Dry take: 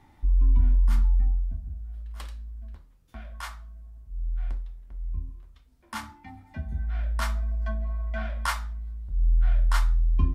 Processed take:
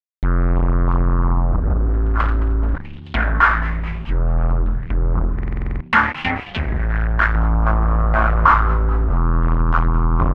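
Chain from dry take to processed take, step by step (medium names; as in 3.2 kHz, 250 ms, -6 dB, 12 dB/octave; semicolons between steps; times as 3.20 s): dynamic bell 2.7 kHz, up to +5 dB, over -53 dBFS, Q 1.7; in parallel at -0.5 dB: compression, threshold -35 dBFS, peak gain reduction 18 dB; 6.48–7.35 s: on the sum: valve stage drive 33 dB, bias 0.6; fuzz box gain 36 dB, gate -40 dBFS; on a send: frequency-shifting echo 216 ms, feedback 60%, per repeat -71 Hz, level -16 dB; on the sum: buffer glitch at 5.34 s, samples 2048, times 9; touch-sensitive low-pass 790–4200 Hz down, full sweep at -9.5 dBFS; trim -1 dB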